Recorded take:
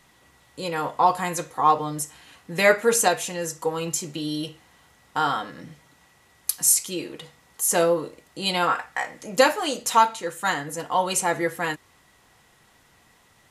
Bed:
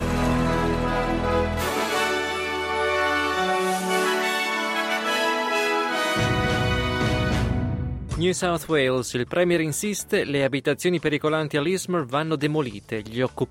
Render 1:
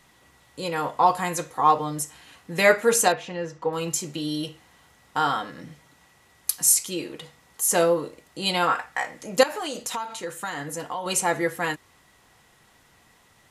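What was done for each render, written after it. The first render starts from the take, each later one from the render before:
0:03.12–0:03.73: high-frequency loss of the air 240 metres
0:09.43–0:11.06: downward compressor 10 to 1, threshold −26 dBFS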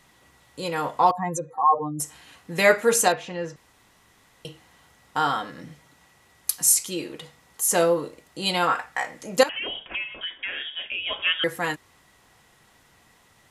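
0:01.11–0:02.00: expanding power law on the bin magnitudes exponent 2.4
0:03.56–0:04.45: fill with room tone
0:09.49–0:11.44: voice inversion scrambler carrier 3,500 Hz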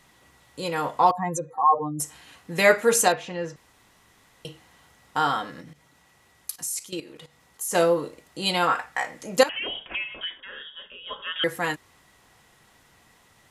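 0:05.61–0:07.75: output level in coarse steps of 15 dB
0:10.40–0:11.36: phaser with its sweep stopped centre 470 Hz, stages 8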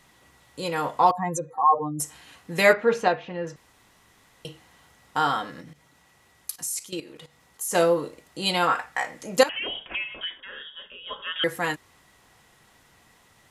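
0:02.73–0:03.47: high-frequency loss of the air 270 metres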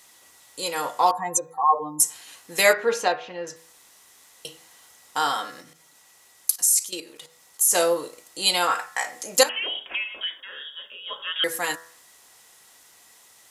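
bass and treble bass −14 dB, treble +12 dB
hum removal 82.05 Hz, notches 23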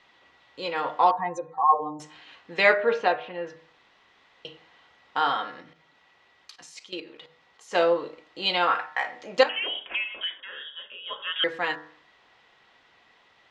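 low-pass filter 3,400 Hz 24 dB per octave
hum removal 152.8 Hz, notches 7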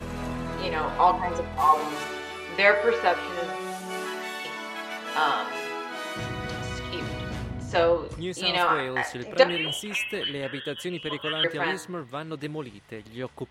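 mix in bed −10.5 dB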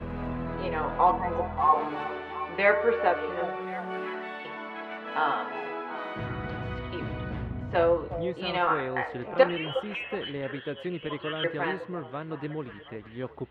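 high-frequency loss of the air 470 metres
echo through a band-pass that steps 360 ms, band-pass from 590 Hz, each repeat 0.7 octaves, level −10.5 dB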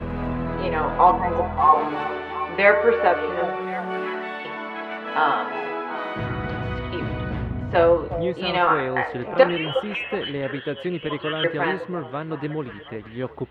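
level +6.5 dB
brickwall limiter −3 dBFS, peak gain reduction 2 dB

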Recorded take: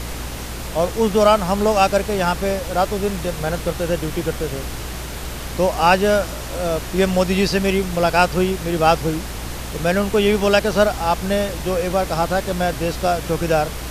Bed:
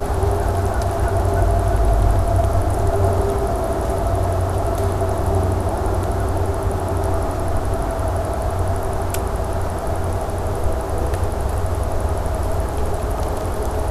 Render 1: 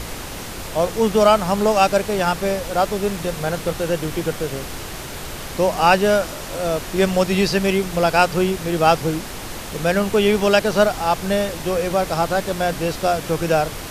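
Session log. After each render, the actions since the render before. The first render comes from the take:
hum removal 60 Hz, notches 5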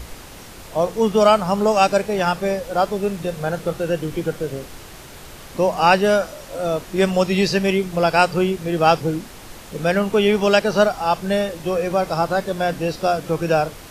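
noise reduction from a noise print 8 dB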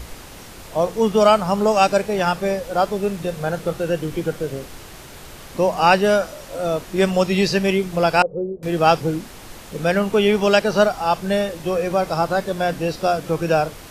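0:08.22–0:08.63: transistor ladder low-pass 540 Hz, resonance 70%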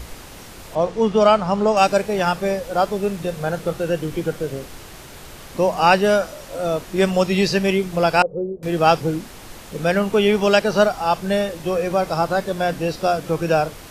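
0:00.75–0:01.77: high-frequency loss of the air 78 metres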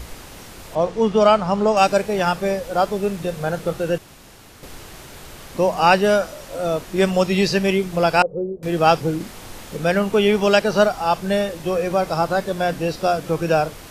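0:03.98–0:04.63: fill with room tone
0:09.17–0:09.77: double-tracking delay 35 ms −3.5 dB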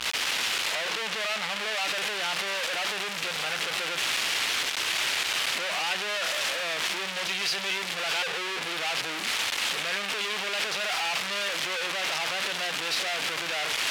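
sign of each sample alone
resonant band-pass 2,800 Hz, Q 1.2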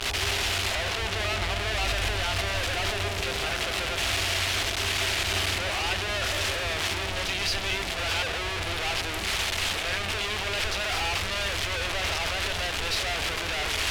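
mix in bed −15.5 dB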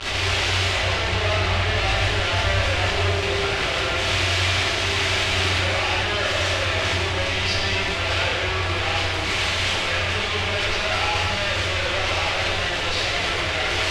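high-frequency loss of the air 75 metres
reverb whose tail is shaped and stops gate 420 ms falling, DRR −6 dB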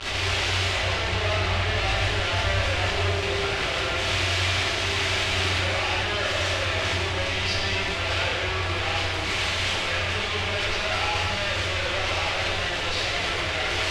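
level −3 dB

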